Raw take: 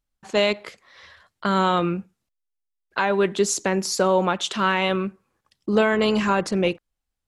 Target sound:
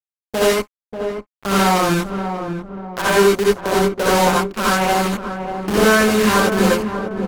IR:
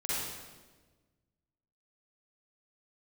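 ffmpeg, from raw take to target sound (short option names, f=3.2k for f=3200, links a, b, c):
-filter_complex "[0:a]deesser=0.95,afwtdn=0.0316,asplit=2[a][b];[b]alimiter=limit=-20dB:level=0:latency=1:release=90,volume=1.5dB[c];[a][c]amix=inputs=2:normalize=0,lowpass=5.8k,bandreject=f=60:t=h:w=6,bandreject=f=120:t=h:w=6,bandreject=f=180:t=h:w=6,bandreject=f=240:t=h:w=6,bandreject=f=300:t=h:w=6,bandreject=f=360:t=h:w=6,bandreject=f=420:t=h:w=6,bandreject=f=480:t=h:w=6,acrusher=bits=4:dc=4:mix=0:aa=0.000001,aeval=exprs='sgn(val(0))*max(abs(val(0))-0.0266,0)':c=same,asplit=2[d][e];[e]adelay=589,lowpass=f=890:p=1,volume=-6.5dB,asplit=2[f][g];[g]adelay=589,lowpass=f=890:p=1,volume=0.5,asplit=2[h][i];[i]adelay=589,lowpass=f=890:p=1,volume=0.5,asplit=2[j][k];[k]adelay=589,lowpass=f=890:p=1,volume=0.5,asplit=2[l][m];[m]adelay=589,lowpass=f=890:p=1,volume=0.5,asplit=2[n][o];[o]adelay=589,lowpass=f=890:p=1,volume=0.5[p];[d][f][h][j][l][n][p]amix=inputs=7:normalize=0[q];[1:a]atrim=start_sample=2205,atrim=end_sample=3087,asetrate=32193,aresample=44100[r];[q][r]afir=irnorm=-1:irlink=0"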